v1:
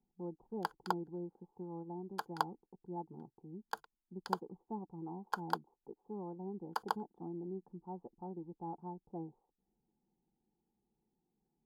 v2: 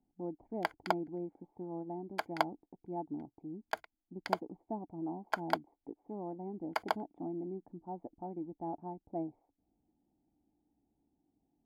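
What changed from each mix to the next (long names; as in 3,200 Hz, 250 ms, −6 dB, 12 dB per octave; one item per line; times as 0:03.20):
master: remove phaser with its sweep stopped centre 430 Hz, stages 8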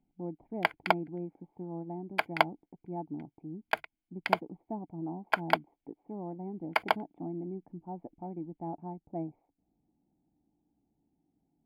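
background +5.0 dB
master: add graphic EQ with 15 bands 160 Hz +7 dB, 2,500 Hz +11 dB, 6,300 Hz −10 dB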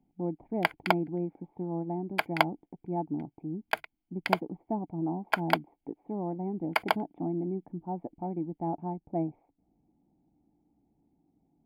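speech +6.0 dB
master: add high-shelf EQ 5,500 Hz +7 dB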